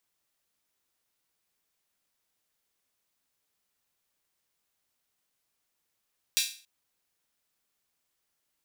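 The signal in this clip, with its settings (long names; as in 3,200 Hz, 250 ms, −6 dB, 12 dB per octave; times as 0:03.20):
open synth hi-hat length 0.28 s, high-pass 3,200 Hz, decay 0.40 s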